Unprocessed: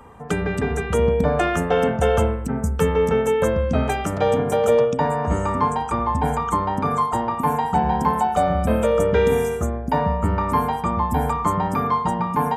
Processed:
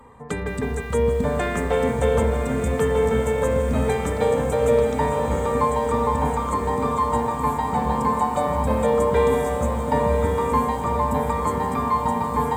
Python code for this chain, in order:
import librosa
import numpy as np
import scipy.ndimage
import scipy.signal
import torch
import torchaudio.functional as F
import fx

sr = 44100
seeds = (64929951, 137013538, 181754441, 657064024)

y = fx.ripple_eq(x, sr, per_octave=1.0, db=7)
y = fx.echo_diffused(y, sr, ms=1042, feedback_pct=53, wet_db=-5.0)
y = fx.echo_crushed(y, sr, ms=160, feedback_pct=55, bits=6, wet_db=-13)
y = y * 10.0 ** (-4.0 / 20.0)